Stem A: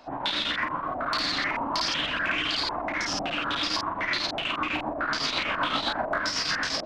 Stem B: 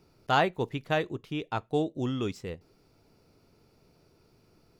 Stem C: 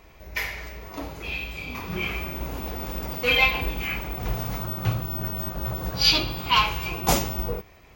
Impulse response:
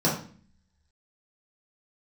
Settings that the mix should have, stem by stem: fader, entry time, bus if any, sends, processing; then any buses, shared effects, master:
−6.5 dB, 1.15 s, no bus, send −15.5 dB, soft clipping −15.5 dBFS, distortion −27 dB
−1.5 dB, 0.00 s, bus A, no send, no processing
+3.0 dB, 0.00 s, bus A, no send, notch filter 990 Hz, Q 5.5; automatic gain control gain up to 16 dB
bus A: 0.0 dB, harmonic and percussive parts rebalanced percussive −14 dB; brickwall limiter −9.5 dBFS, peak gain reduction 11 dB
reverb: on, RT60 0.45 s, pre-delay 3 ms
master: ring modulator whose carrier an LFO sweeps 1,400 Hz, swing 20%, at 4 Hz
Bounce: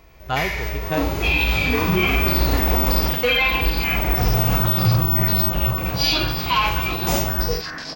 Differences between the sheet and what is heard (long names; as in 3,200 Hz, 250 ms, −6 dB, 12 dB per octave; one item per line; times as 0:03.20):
stem B −1.5 dB → +6.5 dB
stem C: missing notch filter 990 Hz, Q 5.5
master: missing ring modulator whose carrier an LFO sweeps 1,400 Hz, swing 20%, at 4 Hz